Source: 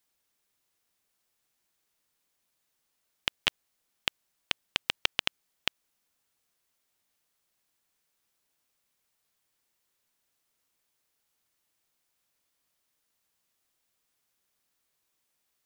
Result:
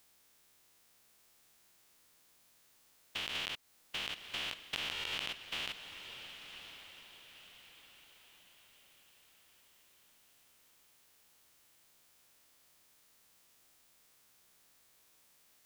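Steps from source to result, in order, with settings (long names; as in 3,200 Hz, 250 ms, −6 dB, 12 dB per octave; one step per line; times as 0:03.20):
spectrum averaged block by block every 200 ms
downward compressor 6 to 1, threshold −48 dBFS, peak gain reduction 11.5 dB
feedback delay with all-pass diffusion 1,055 ms, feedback 42%, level −10 dB
level +12 dB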